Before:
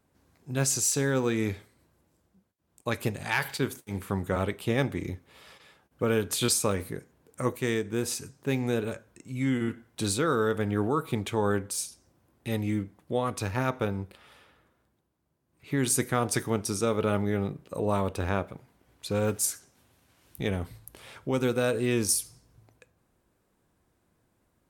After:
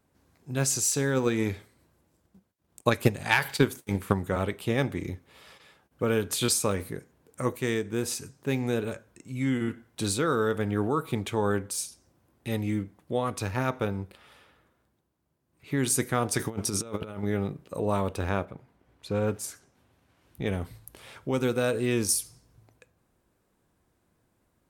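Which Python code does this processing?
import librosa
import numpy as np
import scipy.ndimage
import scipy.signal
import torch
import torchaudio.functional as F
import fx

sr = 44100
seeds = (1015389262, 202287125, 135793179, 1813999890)

y = fx.transient(x, sr, attack_db=9, sustain_db=1, at=(1.16, 4.12), fade=0.02)
y = fx.over_compress(y, sr, threshold_db=-32.0, ratio=-0.5, at=(16.38, 17.23))
y = fx.high_shelf(y, sr, hz=3800.0, db=-11.0, at=(18.44, 20.46), fade=0.02)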